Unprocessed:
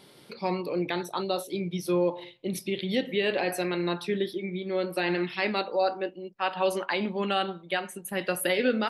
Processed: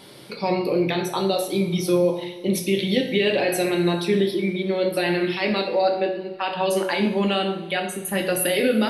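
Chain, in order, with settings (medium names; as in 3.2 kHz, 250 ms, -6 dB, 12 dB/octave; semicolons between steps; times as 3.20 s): dynamic bell 1.2 kHz, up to -5 dB, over -39 dBFS, Q 0.92; peak limiter -20.5 dBFS, peak gain reduction 7 dB; two-slope reverb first 0.51 s, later 2.7 s, from -18 dB, DRR 2.5 dB; trim +7.5 dB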